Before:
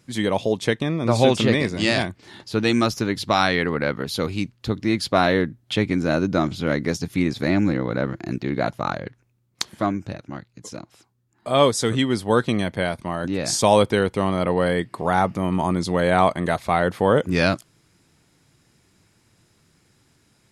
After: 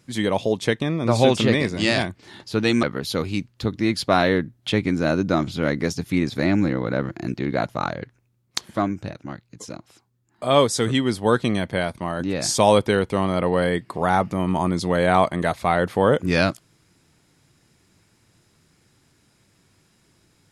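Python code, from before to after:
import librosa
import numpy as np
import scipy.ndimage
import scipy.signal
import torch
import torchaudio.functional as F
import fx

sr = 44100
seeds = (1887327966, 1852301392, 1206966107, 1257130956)

y = fx.edit(x, sr, fx.cut(start_s=2.83, length_s=1.04), tone=tone)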